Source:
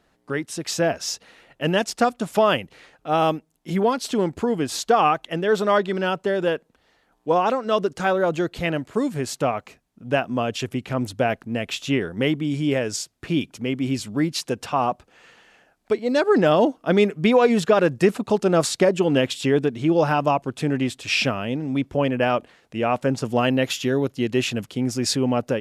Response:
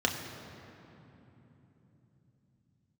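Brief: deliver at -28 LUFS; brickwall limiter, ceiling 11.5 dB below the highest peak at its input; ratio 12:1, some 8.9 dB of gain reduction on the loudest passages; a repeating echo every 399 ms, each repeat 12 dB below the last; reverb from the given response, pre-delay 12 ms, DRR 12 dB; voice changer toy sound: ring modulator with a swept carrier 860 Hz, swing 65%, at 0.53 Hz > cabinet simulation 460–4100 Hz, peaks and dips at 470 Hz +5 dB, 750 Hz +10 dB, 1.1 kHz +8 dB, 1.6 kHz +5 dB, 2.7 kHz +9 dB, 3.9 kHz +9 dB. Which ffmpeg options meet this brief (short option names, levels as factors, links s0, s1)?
-filter_complex "[0:a]acompressor=threshold=0.0891:ratio=12,alimiter=limit=0.075:level=0:latency=1,aecho=1:1:399|798|1197:0.251|0.0628|0.0157,asplit=2[s0][s1];[1:a]atrim=start_sample=2205,adelay=12[s2];[s1][s2]afir=irnorm=-1:irlink=0,volume=0.0794[s3];[s0][s3]amix=inputs=2:normalize=0,aeval=exprs='val(0)*sin(2*PI*860*n/s+860*0.65/0.53*sin(2*PI*0.53*n/s))':c=same,highpass=460,equalizer=f=470:t=q:w=4:g=5,equalizer=f=750:t=q:w=4:g=10,equalizer=f=1100:t=q:w=4:g=8,equalizer=f=1600:t=q:w=4:g=5,equalizer=f=2700:t=q:w=4:g=9,equalizer=f=3900:t=q:w=4:g=9,lowpass=f=4100:w=0.5412,lowpass=f=4100:w=1.3066,volume=1.06"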